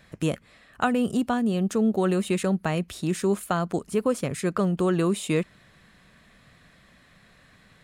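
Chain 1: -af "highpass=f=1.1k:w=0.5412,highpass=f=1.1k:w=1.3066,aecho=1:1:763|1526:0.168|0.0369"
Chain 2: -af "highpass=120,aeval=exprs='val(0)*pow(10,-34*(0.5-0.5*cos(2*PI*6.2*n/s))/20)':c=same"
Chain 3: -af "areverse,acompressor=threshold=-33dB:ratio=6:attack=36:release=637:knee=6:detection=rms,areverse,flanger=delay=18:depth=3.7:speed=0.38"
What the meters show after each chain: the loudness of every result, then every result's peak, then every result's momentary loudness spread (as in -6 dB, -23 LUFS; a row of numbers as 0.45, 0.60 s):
-36.0, -34.0, -40.5 LUFS; -13.5, -13.0, -24.5 dBFS; 16, 10, 20 LU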